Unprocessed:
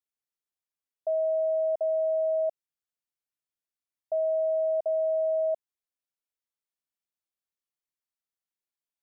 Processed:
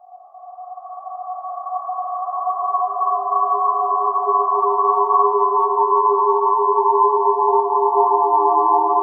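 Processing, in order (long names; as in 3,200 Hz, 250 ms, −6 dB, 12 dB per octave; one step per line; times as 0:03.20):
parametric band 590 Hz +10.5 dB 2.7 octaves
granular cloud 100 ms, grains 20 per second, spray 32 ms, pitch spread up and down by 12 semitones
extreme stretch with random phases 17×, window 0.50 s, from 0:03.91
level +1.5 dB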